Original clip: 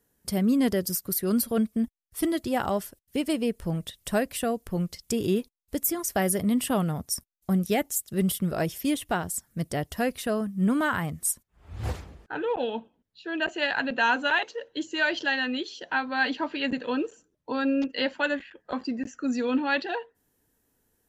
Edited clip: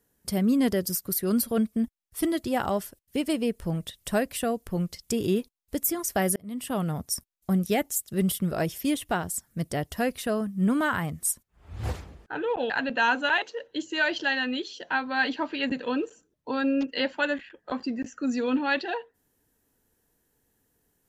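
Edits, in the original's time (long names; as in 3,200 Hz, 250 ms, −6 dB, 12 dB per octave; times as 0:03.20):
0:06.36–0:06.95: fade in
0:12.70–0:13.71: remove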